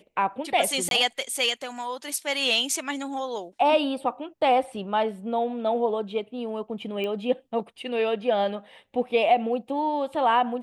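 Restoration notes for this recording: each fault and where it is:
0.89–0.91 s: dropout 22 ms
7.04 s: pop -20 dBFS

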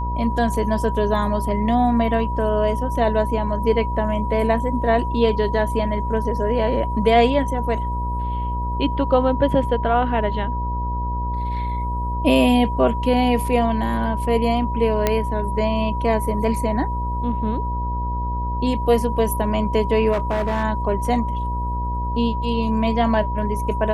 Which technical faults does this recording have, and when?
buzz 60 Hz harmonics 12 -25 dBFS
whine 970 Hz -26 dBFS
15.07 s: pop -4 dBFS
20.12–20.64 s: clipped -17 dBFS

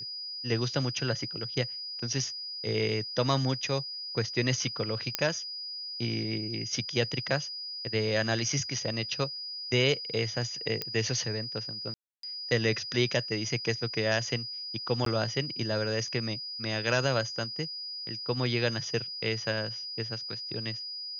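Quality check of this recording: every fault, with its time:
whine 4.9 kHz -36 dBFS
5.15 s: pop -8 dBFS
10.82 s: pop -16 dBFS
11.94–12.23 s: dropout 293 ms
15.05–15.06 s: dropout 13 ms

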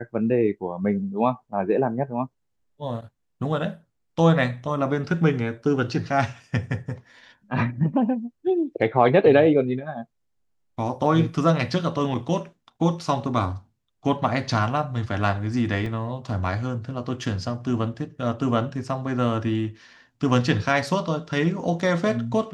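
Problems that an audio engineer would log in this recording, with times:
15.86 s: dropout 2.8 ms

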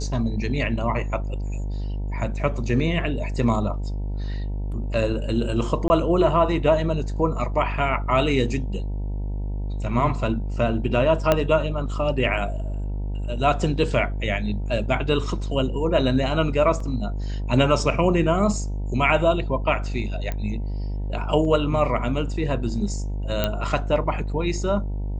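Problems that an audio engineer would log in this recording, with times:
buzz 50 Hz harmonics 19 -27 dBFS
5.88–5.90 s: dropout 20 ms
11.32 s: pop -5 dBFS
16.80 s: dropout 3.7 ms
20.32 s: pop -15 dBFS
23.44 s: pop -8 dBFS

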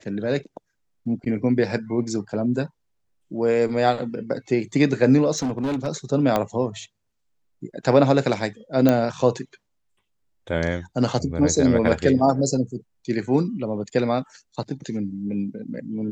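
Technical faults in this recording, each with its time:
5.37–5.88 s: clipped -21 dBFS
6.36 s: pop -8 dBFS
8.89 s: pop -6 dBFS

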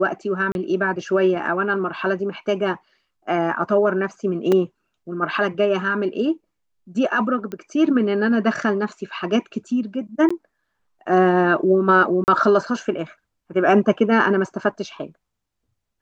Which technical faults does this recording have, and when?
0.52–0.55 s: dropout 31 ms
4.52 s: dropout 3.5 ms
7.52 s: pop -19 dBFS
10.29–10.30 s: dropout 15 ms
12.24–12.28 s: dropout 39 ms

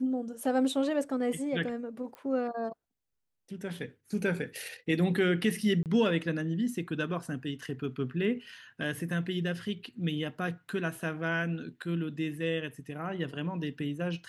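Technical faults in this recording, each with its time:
2.15 s: pop -30 dBFS
5.83–5.86 s: dropout 28 ms

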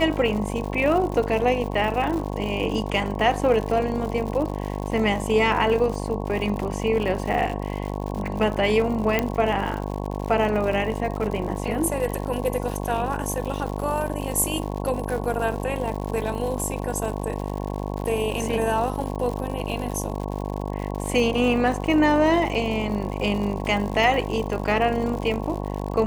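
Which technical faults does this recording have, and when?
buzz 50 Hz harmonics 22 -29 dBFS
crackle 120 per s -30 dBFS
9.19 s: pop -8 dBFS

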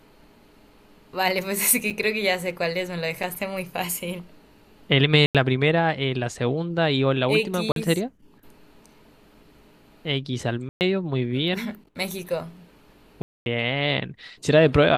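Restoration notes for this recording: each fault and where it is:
1.90–1.91 s: dropout 5.6 ms
3.23 s: dropout 3.8 ms
5.26–5.35 s: dropout 87 ms
7.72–7.76 s: dropout 42 ms
10.69–10.81 s: dropout 119 ms
13.22–13.46 s: dropout 241 ms

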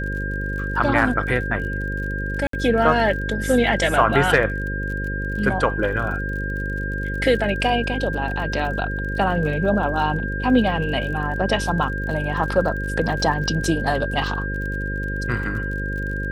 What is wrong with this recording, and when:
buzz 50 Hz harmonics 11 -27 dBFS
crackle 34 per s -31 dBFS
whine 1.6 kHz -28 dBFS
2.47–2.53 s: dropout 63 ms

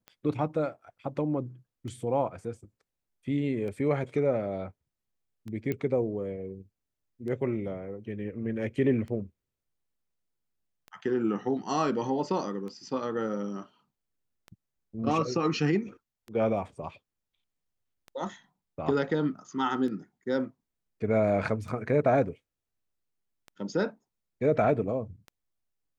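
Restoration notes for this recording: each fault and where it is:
tick 33 1/3 rpm -29 dBFS
5.72 s: pop -19 dBFS

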